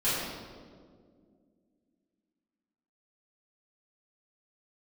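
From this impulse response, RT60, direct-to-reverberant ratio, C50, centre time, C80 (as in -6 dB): 2.0 s, -14.0 dB, -2.0 dB, 0.113 s, 0.0 dB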